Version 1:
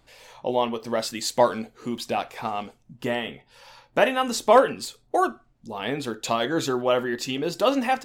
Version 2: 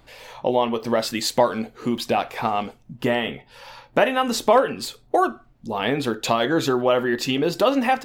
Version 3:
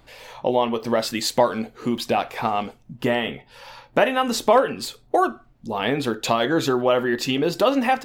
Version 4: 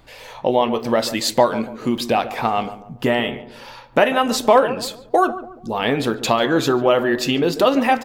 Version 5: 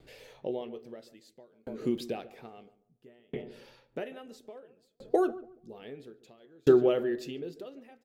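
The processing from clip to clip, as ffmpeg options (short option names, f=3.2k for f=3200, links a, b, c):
-af "equalizer=f=7.5k:t=o:w=1.3:g=-6,acompressor=threshold=-26dB:ratio=2,volume=7.5dB"
-af anull
-filter_complex "[0:a]asplit=2[a][b];[b]adelay=142,lowpass=f=1.1k:p=1,volume=-12.5dB,asplit=2[c][d];[d]adelay=142,lowpass=f=1.1k:p=1,volume=0.42,asplit=2[e][f];[f]adelay=142,lowpass=f=1.1k:p=1,volume=0.42,asplit=2[g][h];[h]adelay=142,lowpass=f=1.1k:p=1,volume=0.42[i];[a][c][e][g][i]amix=inputs=5:normalize=0,volume=3dB"
-af "equalizer=f=160:t=o:w=0.67:g=6,equalizer=f=400:t=o:w=0.67:g=11,equalizer=f=1k:t=o:w=0.67:g=-10,aeval=exprs='val(0)*pow(10,-39*if(lt(mod(0.6*n/s,1),2*abs(0.6)/1000),1-mod(0.6*n/s,1)/(2*abs(0.6)/1000),(mod(0.6*n/s,1)-2*abs(0.6)/1000)/(1-2*abs(0.6)/1000))/20)':c=same,volume=-9dB"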